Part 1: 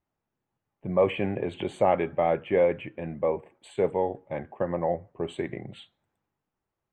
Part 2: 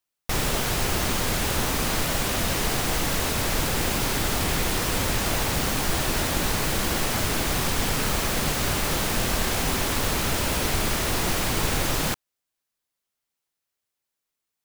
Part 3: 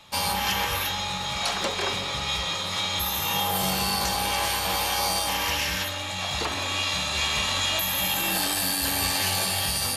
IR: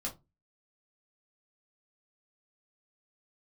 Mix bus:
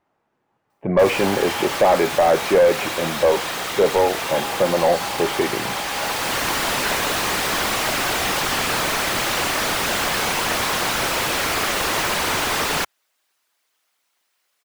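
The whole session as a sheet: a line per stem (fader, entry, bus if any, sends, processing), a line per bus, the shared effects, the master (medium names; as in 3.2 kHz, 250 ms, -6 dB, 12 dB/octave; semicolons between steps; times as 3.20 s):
+2.5 dB, 0.00 s, no send, none
+2.5 dB, 0.70 s, no send, tilt EQ +2.5 dB/octave; whisper effect; auto duck -13 dB, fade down 0.25 s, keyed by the first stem
-13.0 dB, 1.00 s, no send, none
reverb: none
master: overdrive pedal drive 24 dB, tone 1.2 kHz, clips at -5 dBFS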